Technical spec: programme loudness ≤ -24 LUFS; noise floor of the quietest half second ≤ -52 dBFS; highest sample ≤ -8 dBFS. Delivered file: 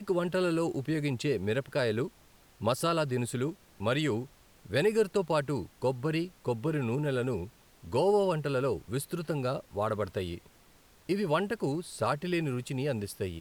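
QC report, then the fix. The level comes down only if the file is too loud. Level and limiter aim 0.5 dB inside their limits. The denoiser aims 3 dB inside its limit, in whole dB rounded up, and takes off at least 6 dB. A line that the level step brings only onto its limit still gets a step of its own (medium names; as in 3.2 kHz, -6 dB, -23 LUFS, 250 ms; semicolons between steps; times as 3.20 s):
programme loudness -31.0 LUFS: pass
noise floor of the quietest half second -60 dBFS: pass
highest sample -13.5 dBFS: pass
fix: none needed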